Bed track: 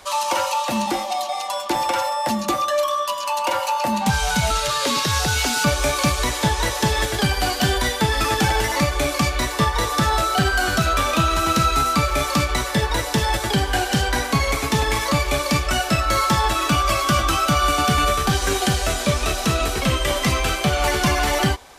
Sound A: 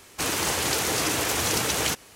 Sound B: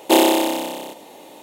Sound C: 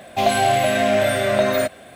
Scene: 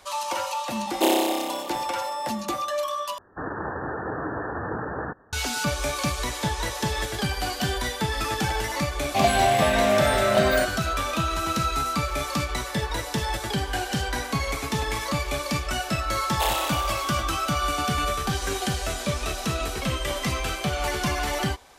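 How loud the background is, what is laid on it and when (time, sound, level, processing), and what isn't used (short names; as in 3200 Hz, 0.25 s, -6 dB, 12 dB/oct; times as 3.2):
bed track -7 dB
0.91 add B -7 dB
3.18 replace with A -1 dB + Chebyshev low-pass 1800 Hz, order 10
8.98 add C -3 dB
16.3 add B -8.5 dB + HPF 640 Hz 24 dB/oct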